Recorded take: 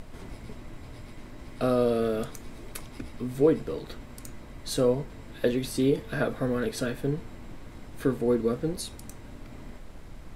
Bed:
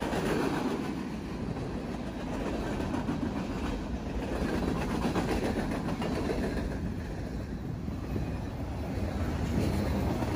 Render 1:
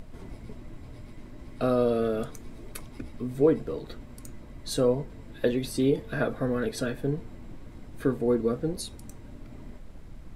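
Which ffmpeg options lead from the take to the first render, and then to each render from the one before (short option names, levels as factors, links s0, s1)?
-af "afftdn=nr=6:nf=-45"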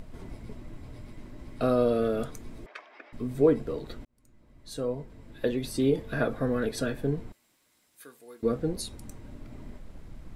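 -filter_complex "[0:a]asettb=1/sr,asplit=3[s0][s1][s2];[s0]atrim=end=2.664[s3];[s1]atrim=start=2.66:end=3.13,asetpts=PTS-STARTPTS,afade=t=in:d=0.004:c=qsin,afade=t=out:st=0.466:d=0.004:c=qsin,highpass=f=480:w=0.5412,highpass=f=480:w=1.3066,equalizer=f=490:t=q:w=4:g=-4,equalizer=f=690:t=q:w=4:g=5,equalizer=f=1200:t=q:w=4:g=3,equalizer=f=1700:t=q:w=4:g=8,equalizer=f=2400:t=q:w=4:g=3,equalizer=f=4100:t=q:w=4:g=-7,lowpass=f=4400:w=0.5412,lowpass=f=4400:w=1.3066[s4];[s2]atrim=start=3.126[s5];[s3][s4]acrossfade=d=0.004:c1=hsin:c2=qsin[s6];[s6][s5]acrossfade=d=0.004:c1=qsin:c2=hsin,asettb=1/sr,asplit=3[s7][s8][s9];[s7]atrim=end=7.324[s10];[s8]atrim=start=7.32:end=8.43,asetpts=PTS-STARTPTS,afade=t=in:d=0.004:c=qsin,afade=t=out:st=1.106:d=0.004:c=qsin,aderivative[s11];[s9]atrim=start=8.426[s12];[s10][s11]acrossfade=d=0.004:c1=hsin:c2=qsin[s13];[s13][s12]acrossfade=d=0.004:c1=qsin:c2=hsin,asplit=2[s14][s15];[s14]atrim=end=4.05,asetpts=PTS-STARTPTS,afade=t=out:st=4.046:d=0.004:c=hsin[s16];[s15]atrim=start=4.05,asetpts=PTS-STARTPTS,afade=t=in:d=1.96[s17];[s16][s17]concat=n=2:v=0:a=1"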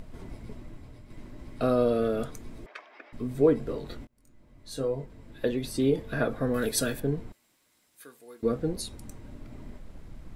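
-filter_complex "[0:a]asettb=1/sr,asplit=3[s0][s1][s2];[s0]atrim=end=3.604[s3];[s1]atrim=start=3.6:end=5.06,asetpts=PTS-STARTPTS,afade=t=in:d=0.004:c=qsin,afade=t=out:st=1.456:d=0.004:c=qsin,asplit=2[s4][s5];[s5]adelay=22,volume=0.531[s6];[s4][s6]amix=inputs=2:normalize=0,atrim=end_sample=64386[s7];[s2]atrim=start=5.056[s8];[s3][s7]acrossfade=d=0.004:c1=hsin:c2=qsin[s9];[s9][s8]acrossfade=d=0.004:c1=qsin:c2=hsin,asettb=1/sr,asplit=3[s10][s11][s12];[s10]atrim=end=6.544[s13];[s11]atrim=start=6.54:end=7,asetpts=PTS-STARTPTS,afade=t=in:d=0.004:c=qsin,afade=t=out:st=0.456:d=0.004:c=qsin,aemphasis=mode=production:type=75kf[s14];[s12]atrim=start=6.996[s15];[s13][s14]acrossfade=d=0.004:c1=hsin:c2=qsin[s16];[s16][s15]acrossfade=d=0.004:c1=qsin:c2=hsin,asplit=2[s17][s18];[s17]atrim=end=1.1,asetpts=PTS-STARTPTS,afade=t=out:st=0.58:d=0.52:silence=0.446684[s19];[s18]atrim=start=1.1,asetpts=PTS-STARTPTS,afade=t=in:d=0.004:c=hsin:silence=0.446684[s20];[s19][s20]concat=n=2:v=0:a=1"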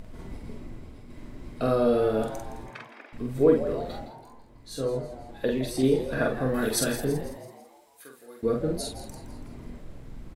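-filter_complex "[0:a]asplit=2[s0][s1];[s1]adelay=46,volume=0.708[s2];[s0][s2]amix=inputs=2:normalize=0,asplit=6[s3][s4][s5][s6][s7][s8];[s4]adelay=165,afreqshift=110,volume=0.224[s9];[s5]adelay=330,afreqshift=220,volume=0.11[s10];[s6]adelay=495,afreqshift=330,volume=0.0537[s11];[s7]adelay=660,afreqshift=440,volume=0.0263[s12];[s8]adelay=825,afreqshift=550,volume=0.0129[s13];[s3][s9][s10][s11][s12][s13]amix=inputs=6:normalize=0"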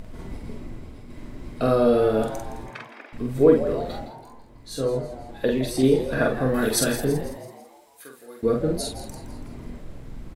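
-af "volume=1.58"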